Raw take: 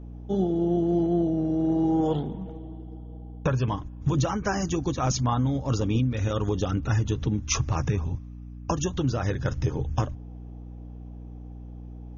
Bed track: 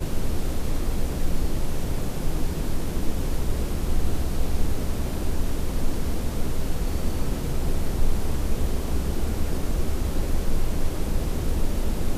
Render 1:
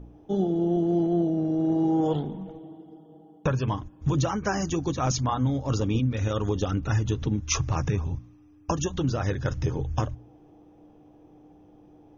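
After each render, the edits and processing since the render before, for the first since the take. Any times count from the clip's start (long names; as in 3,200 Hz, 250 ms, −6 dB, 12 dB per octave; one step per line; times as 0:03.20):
hum removal 60 Hz, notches 4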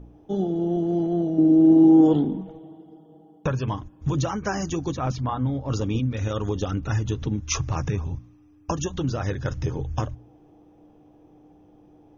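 0:01.38–0:02.41: parametric band 280 Hz +13.5 dB
0:04.97–0:05.71: high-frequency loss of the air 220 metres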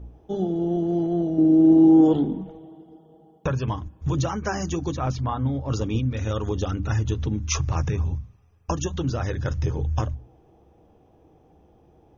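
parametric band 68 Hz +11.5 dB 0.5 octaves
mains-hum notches 50/100/150/200/250/300 Hz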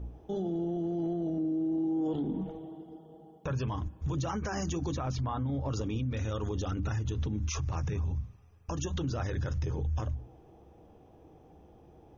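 downward compressor, threshold −23 dBFS, peak gain reduction 11 dB
brickwall limiter −25.5 dBFS, peak gain reduction 11.5 dB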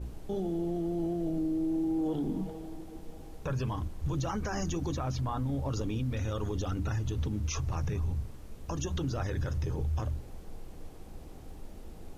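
mix in bed track −22 dB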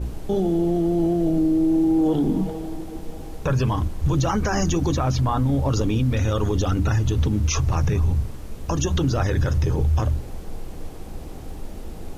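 level +11.5 dB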